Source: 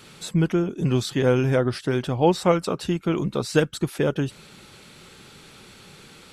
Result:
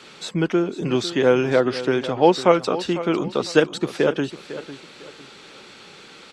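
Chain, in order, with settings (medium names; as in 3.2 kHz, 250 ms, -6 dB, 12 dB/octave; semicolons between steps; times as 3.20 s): three-band isolator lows -15 dB, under 230 Hz, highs -21 dB, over 7.3 kHz; feedback delay 501 ms, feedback 30%, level -14 dB; trim +4.5 dB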